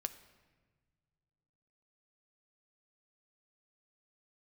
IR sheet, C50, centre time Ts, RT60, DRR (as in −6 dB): 13.5 dB, 7 ms, 1.5 s, 9.5 dB